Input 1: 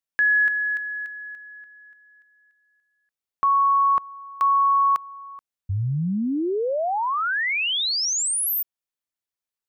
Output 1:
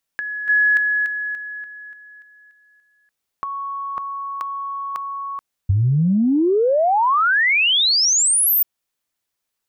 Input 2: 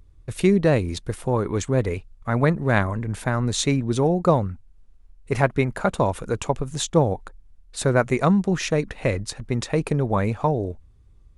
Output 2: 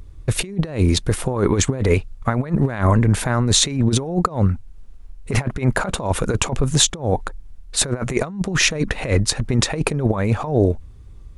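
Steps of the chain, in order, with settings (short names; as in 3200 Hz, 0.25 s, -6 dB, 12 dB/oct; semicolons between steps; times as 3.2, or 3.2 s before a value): negative-ratio compressor -25 dBFS, ratio -0.5; gain +7.5 dB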